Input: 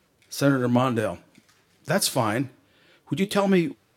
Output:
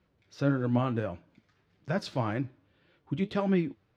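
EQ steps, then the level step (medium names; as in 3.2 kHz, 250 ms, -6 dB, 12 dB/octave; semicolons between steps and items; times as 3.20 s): distance through air 190 m; bass shelf 130 Hz +10 dB; peaking EQ 14 kHz +3 dB 0.26 oct; -8.0 dB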